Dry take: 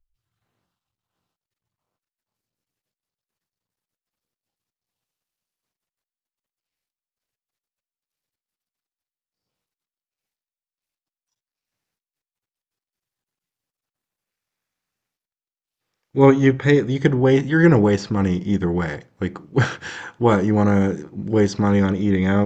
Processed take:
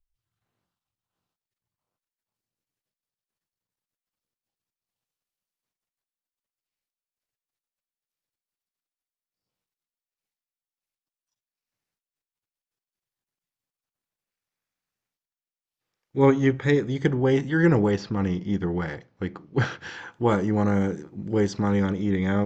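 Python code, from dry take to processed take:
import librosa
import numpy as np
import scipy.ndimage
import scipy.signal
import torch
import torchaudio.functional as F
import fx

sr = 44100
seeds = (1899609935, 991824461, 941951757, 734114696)

y = fx.lowpass(x, sr, hz=6000.0, slope=24, at=(17.91, 20.12))
y = y * 10.0 ** (-5.5 / 20.0)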